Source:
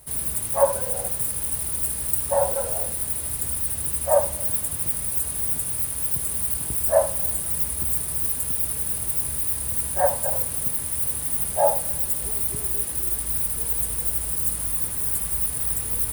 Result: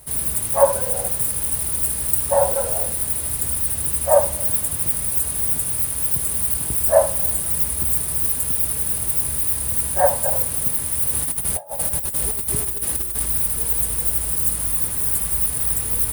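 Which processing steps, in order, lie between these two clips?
11.13–13.26 negative-ratio compressor -27 dBFS, ratio -0.5; gain +4 dB

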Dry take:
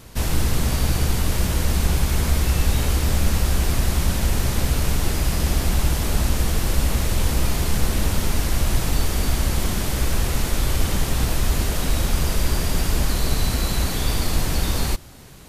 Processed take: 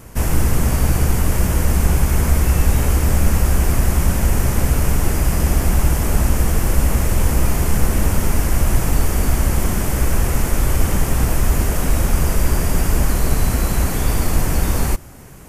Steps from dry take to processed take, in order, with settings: bell 3900 Hz -13 dB 0.79 oct; gain +4.5 dB

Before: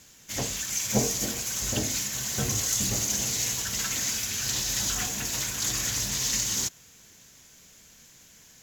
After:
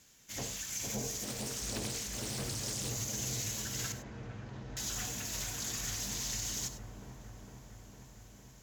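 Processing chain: limiter -19 dBFS, peak gain reduction 8 dB; 3.92–4.77 LPF 1100 Hz 12 dB/oct; dark delay 0.456 s, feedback 74%, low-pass 860 Hz, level -3 dB; non-linear reverb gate 0.12 s rising, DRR 10.5 dB; 1.23–2.89 Doppler distortion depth 0.71 ms; gain -9 dB

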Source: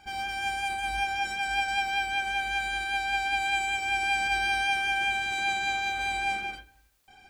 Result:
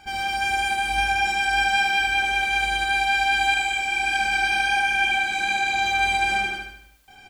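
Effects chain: de-hum 58.45 Hz, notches 20; 3.54–5.79 chorus voices 6, 1.3 Hz, delay 27 ms, depth 3 ms; feedback echo 75 ms, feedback 48%, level -4 dB; gain +6 dB

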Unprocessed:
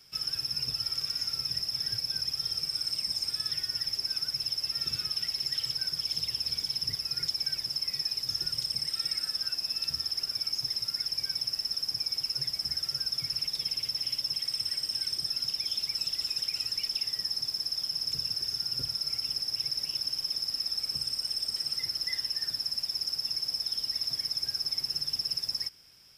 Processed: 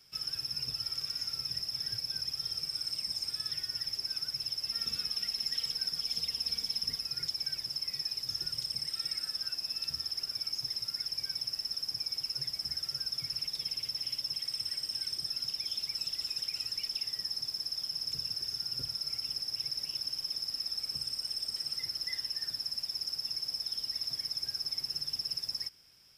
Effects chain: 4.68–7.06 comb 4.3 ms, depth 64%; gain -4 dB

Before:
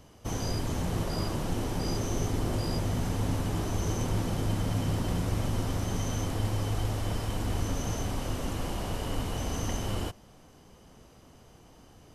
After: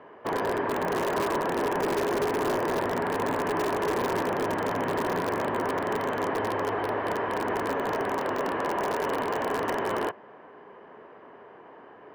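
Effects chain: speaker cabinet 320–2300 Hz, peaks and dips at 410 Hz +9 dB, 620 Hz +4 dB, 1000 Hz +9 dB, 1700 Hz +9 dB; in parallel at -6 dB: wrapped overs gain 25.5 dB; on the sum: gain +2.5 dB

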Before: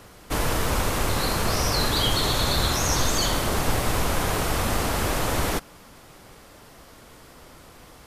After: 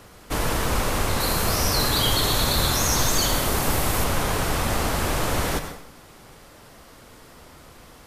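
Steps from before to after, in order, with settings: 1.2–4.04 high shelf 11000 Hz +10.5 dB; plate-style reverb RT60 0.66 s, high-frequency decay 0.85×, pre-delay 85 ms, DRR 7.5 dB

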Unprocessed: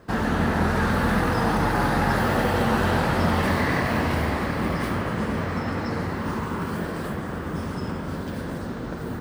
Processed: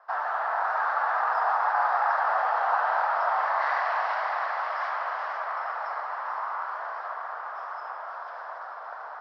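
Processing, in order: Chebyshev band-pass 680–5400 Hz, order 4; resonant high shelf 1900 Hz -13.5 dB, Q 1.5, from 3.61 s -8 dB, from 5.37 s -13.5 dB; diffused feedback echo 0.524 s, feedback 62%, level -9 dB

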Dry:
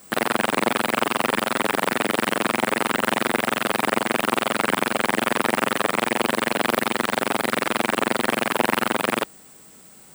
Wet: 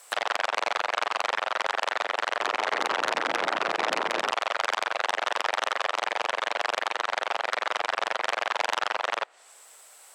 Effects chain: HPF 590 Hz 24 dB/oct; treble ducked by the level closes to 2200 Hz, closed at -23 dBFS; 2.1–4.31 echoes that change speed 0.316 s, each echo -6 st, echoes 3, each echo -6 dB; core saturation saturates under 4000 Hz

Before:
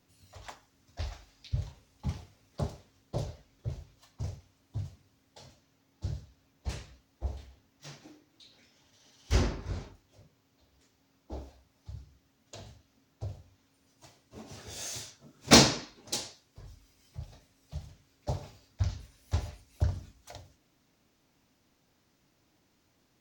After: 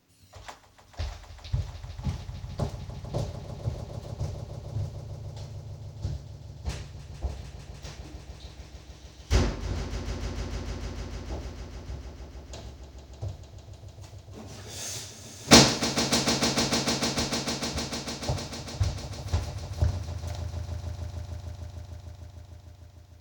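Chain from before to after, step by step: swelling echo 0.15 s, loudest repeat 5, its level -12 dB; gain +3 dB

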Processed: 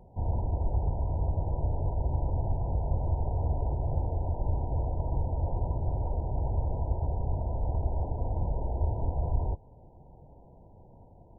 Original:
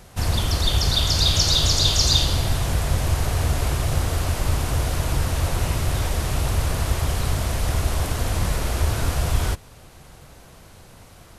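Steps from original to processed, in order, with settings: dynamic EQ 210 Hz, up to -4 dB, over -36 dBFS, Q 0.81; brick-wall FIR low-pass 1000 Hz; gain -6 dB

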